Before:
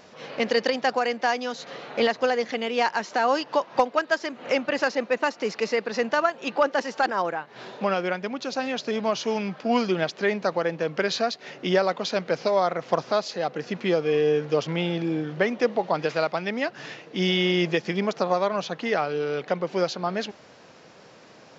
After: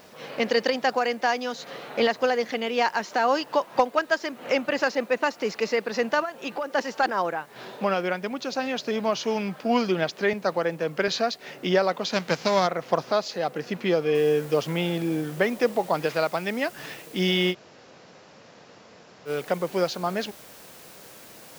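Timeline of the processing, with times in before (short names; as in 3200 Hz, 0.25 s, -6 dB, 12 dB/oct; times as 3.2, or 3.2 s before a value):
6.21–6.75 compressor, threshold -26 dBFS
10.33–11.08 three-band expander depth 40%
12.12–12.66 spectral whitening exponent 0.6
14.15 noise floor step -61 dB -49 dB
17.52–19.28 room tone, crossfade 0.06 s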